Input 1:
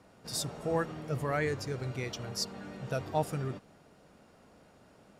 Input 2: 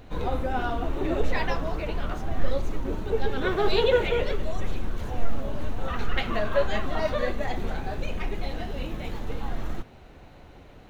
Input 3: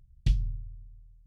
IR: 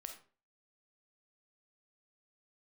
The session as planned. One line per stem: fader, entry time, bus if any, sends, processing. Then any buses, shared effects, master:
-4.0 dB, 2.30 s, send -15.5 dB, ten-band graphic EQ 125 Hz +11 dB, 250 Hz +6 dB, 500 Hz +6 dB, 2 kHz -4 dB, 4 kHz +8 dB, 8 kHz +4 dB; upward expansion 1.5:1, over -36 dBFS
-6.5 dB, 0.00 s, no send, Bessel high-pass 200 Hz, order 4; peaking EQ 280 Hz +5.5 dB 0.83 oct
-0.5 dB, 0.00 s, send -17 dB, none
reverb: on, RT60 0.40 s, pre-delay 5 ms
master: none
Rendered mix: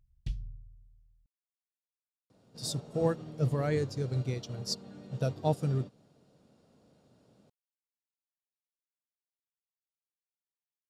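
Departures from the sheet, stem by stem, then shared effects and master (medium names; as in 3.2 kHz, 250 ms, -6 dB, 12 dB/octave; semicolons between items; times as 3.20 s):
stem 1: send off; stem 2: muted; stem 3 -0.5 dB -> -11.5 dB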